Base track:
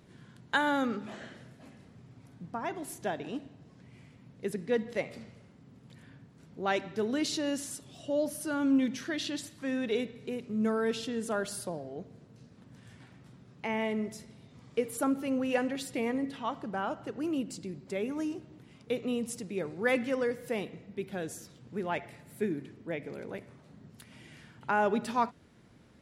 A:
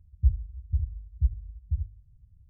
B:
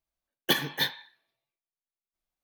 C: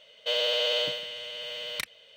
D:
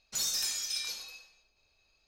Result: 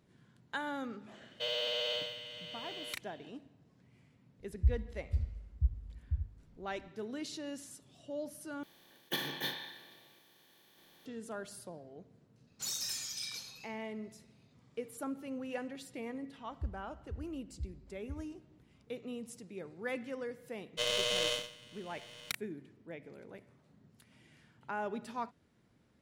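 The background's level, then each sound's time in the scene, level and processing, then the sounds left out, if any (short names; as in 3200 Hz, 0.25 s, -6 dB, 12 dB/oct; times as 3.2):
base track -10.5 dB
1.14 add C -8.5 dB
4.4 add A -6 dB
8.63 replace with B -13.5 dB + per-bin compression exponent 0.4
12.47 add D -3 dB + tape flanging out of phase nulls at 1.8 Hz, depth 7 ms
16.38 add A -15 dB + HPF 53 Hz
20.51 add C -0.5 dB + power-law curve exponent 2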